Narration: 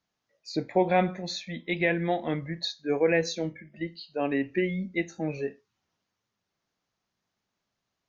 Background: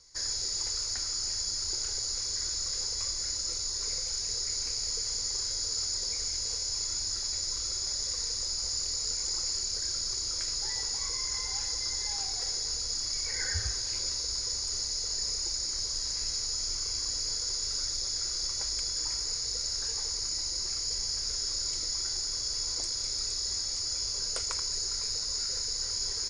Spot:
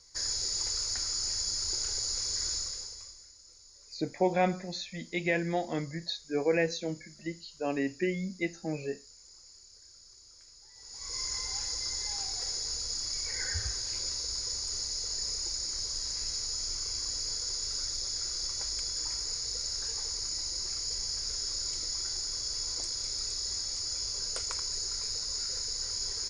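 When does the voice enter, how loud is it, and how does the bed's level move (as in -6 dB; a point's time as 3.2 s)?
3.45 s, -3.5 dB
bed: 2.55 s 0 dB
3.33 s -22.5 dB
10.72 s -22.5 dB
11.18 s -2 dB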